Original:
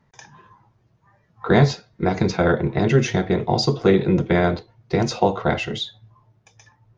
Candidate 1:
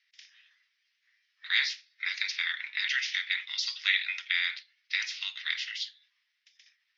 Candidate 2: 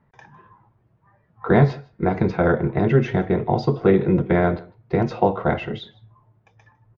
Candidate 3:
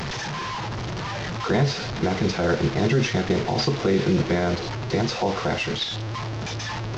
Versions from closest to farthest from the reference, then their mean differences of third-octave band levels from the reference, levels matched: 2, 3, 1; 2.5 dB, 8.5 dB, 19.5 dB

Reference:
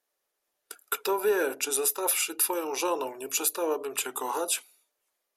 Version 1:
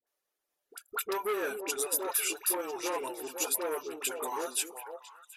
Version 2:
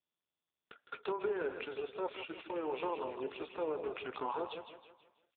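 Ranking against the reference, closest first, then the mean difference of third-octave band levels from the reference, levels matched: 1, 2; 8.0 dB, 13.0 dB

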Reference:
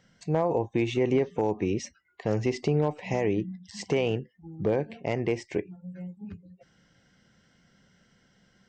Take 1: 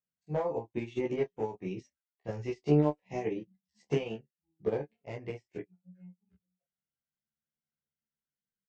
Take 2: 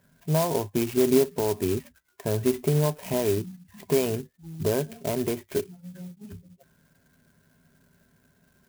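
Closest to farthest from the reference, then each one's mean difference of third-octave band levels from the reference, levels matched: 1, 2; 6.0 dB, 8.5 dB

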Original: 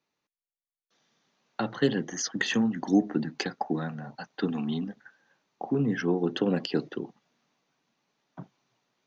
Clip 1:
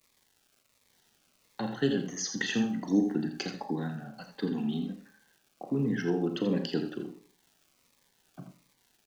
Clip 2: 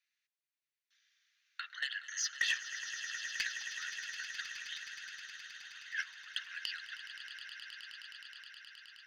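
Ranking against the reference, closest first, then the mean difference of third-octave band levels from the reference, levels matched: 1, 2; 5.0 dB, 22.0 dB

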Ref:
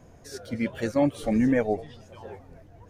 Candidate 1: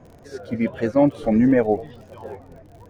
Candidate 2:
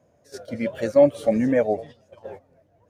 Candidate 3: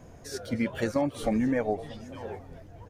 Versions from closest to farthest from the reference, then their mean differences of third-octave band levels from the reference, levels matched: 1, 3, 2; 2.5 dB, 4.0 dB, 5.5 dB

